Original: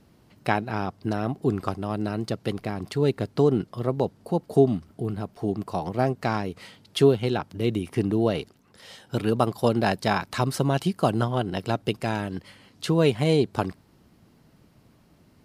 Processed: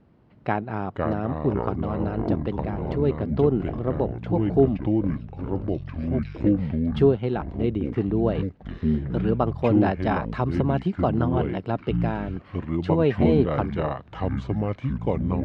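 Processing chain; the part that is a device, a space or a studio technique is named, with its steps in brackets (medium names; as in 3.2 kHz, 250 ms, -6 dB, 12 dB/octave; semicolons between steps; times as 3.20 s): 4.77–6.44 s: inverse Chebyshev high-pass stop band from 560 Hz, stop band 70 dB; ever faster or slower copies 345 ms, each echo -5 st, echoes 3; phone in a pocket (low-pass 3 kHz 12 dB/octave; treble shelf 2.3 kHz -10 dB)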